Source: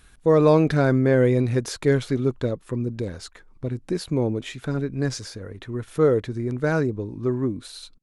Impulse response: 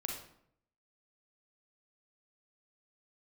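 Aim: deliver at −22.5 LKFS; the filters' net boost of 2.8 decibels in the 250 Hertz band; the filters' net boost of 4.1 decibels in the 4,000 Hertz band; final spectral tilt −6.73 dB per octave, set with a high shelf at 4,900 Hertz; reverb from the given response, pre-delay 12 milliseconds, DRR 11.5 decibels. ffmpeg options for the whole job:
-filter_complex "[0:a]equalizer=frequency=250:width_type=o:gain=3.5,equalizer=frequency=4000:width_type=o:gain=7.5,highshelf=frequency=4900:gain=-5.5,asplit=2[link_01][link_02];[1:a]atrim=start_sample=2205,adelay=12[link_03];[link_02][link_03]afir=irnorm=-1:irlink=0,volume=-12.5dB[link_04];[link_01][link_04]amix=inputs=2:normalize=0,volume=-1dB"

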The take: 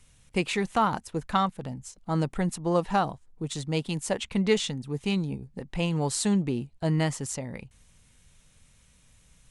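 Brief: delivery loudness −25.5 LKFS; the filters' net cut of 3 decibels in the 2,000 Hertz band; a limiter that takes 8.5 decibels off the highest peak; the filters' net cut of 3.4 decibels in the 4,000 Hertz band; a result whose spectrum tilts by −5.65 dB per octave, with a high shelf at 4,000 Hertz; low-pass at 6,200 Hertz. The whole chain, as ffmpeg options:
ffmpeg -i in.wav -af "lowpass=6200,equalizer=frequency=2000:width_type=o:gain=-3.5,highshelf=frequency=4000:gain=6,equalizer=frequency=4000:width_type=o:gain=-6,volume=5.5dB,alimiter=limit=-13dB:level=0:latency=1" out.wav

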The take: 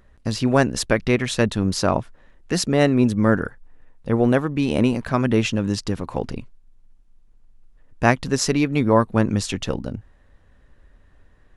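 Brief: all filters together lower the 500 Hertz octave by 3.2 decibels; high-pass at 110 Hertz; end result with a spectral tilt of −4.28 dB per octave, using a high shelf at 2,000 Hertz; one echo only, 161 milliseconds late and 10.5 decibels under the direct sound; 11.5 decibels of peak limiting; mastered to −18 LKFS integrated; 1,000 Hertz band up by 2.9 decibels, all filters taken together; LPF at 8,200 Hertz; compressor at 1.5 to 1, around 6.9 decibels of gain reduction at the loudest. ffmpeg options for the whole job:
ffmpeg -i in.wav -af "highpass=110,lowpass=8200,equalizer=frequency=500:width_type=o:gain=-5.5,equalizer=frequency=1000:width_type=o:gain=4,highshelf=frequency=2000:gain=5.5,acompressor=threshold=-30dB:ratio=1.5,alimiter=limit=-17dB:level=0:latency=1,aecho=1:1:161:0.299,volume=10.5dB" out.wav

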